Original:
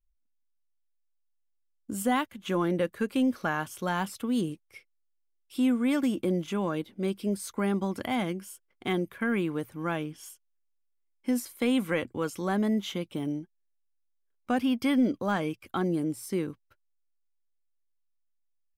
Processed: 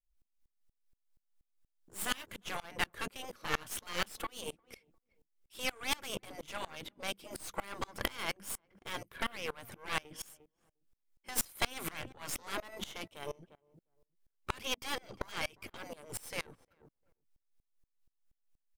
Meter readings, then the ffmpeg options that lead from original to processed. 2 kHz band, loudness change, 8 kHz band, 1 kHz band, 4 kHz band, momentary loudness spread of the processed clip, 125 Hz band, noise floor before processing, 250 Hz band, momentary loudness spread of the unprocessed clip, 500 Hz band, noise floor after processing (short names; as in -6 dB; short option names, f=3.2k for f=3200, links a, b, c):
-3.5 dB, -9.5 dB, +1.5 dB, -7.5 dB, +1.0 dB, 11 LU, -15.5 dB, -74 dBFS, -22.5 dB, 9 LU, -13.0 dB, under -85 dBFS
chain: -filter_complex "[0:a]afftfilt=real='re*lt(hypot(re,im),0.0794)':imag='im*lt(hypot(re,im),0.0794)':win_size=1024:overlap=0.75,aeval=exprs='0.0841*(cos(1*acos(clip(val(0)/0.0841,-1,1)))-cos(1*PI/2))+0.00119*(cos(3*acos(clip(val(0)/0.0841,-1,1)))-cos(3*PI/2))+0.0133*(cos(8*acos(clip(val(0)/0.0841,-1,1)))-cos(8*PI/2))':c=same,asplit=2[a][b];[b]adelay=352,lowpass=f=820:p=1,volume=-19dB,asplit=2[c][d];[d]adelay=352,lowpass=f=820:p=1,volume=0.21[e];[a][c][e]amix=inputs=3:normalize=0,aeval=exprs='val(0)*pow(10,-27*if(lt(mod(-4.2*n/s,1),2*abs(-4.2)/1000),1-mod(-4.2*n/s,1)/(2*abs(-4.2)/1000),(mod(-4.2*n/s,1)-2*abs(-4.2)/1000)/(1-2*abs(-4.2)/1000))/20)':c=same,volume=9.5dB"